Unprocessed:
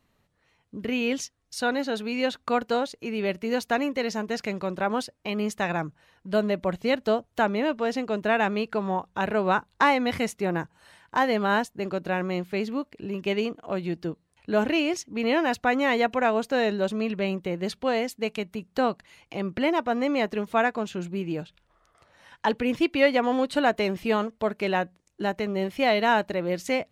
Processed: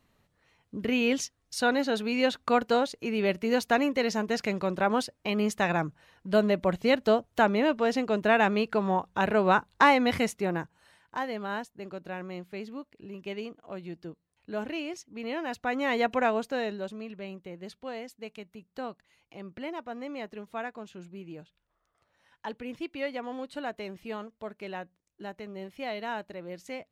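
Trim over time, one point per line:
10.15 s +0.5 dB
11.31 s -10.5 dB
15.37 s -10.5 dB
16.17 s -1.5 dB
17.06 s -13 dB

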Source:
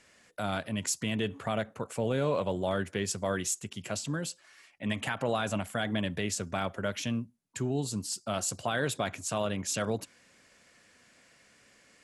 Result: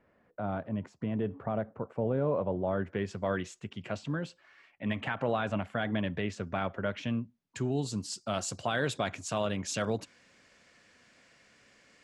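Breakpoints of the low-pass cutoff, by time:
2.61 s 1 kHz
3.19 s 2.6 kHz
7.03 s 2.6 kHz
7.65 s 6.3 kHz

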